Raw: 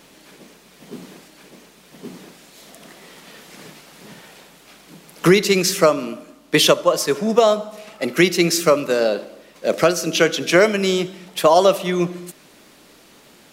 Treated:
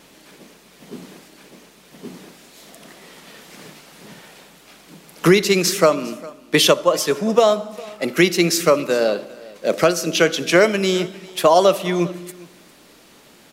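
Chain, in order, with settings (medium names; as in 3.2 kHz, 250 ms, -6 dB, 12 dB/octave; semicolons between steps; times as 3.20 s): vibrato 0.89 Hz 5.6 cents; delay 404 ms -21.5 dB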